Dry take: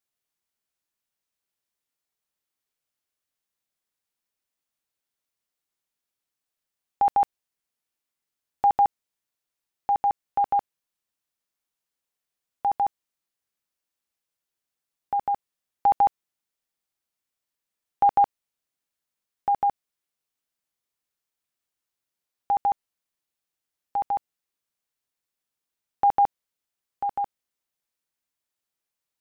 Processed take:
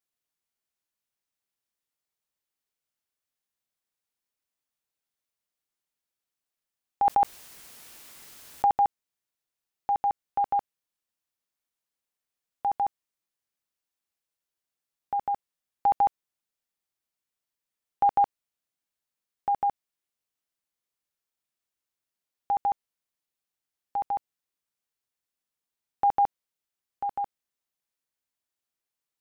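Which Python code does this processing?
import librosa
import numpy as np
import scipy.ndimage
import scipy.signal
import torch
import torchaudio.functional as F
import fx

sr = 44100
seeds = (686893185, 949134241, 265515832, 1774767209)

y = fx.env_flatten(x, sr, amount_pct=100, at=(7.05, 8.72))
y = y * librosa.db_to_amplitude(-3.0)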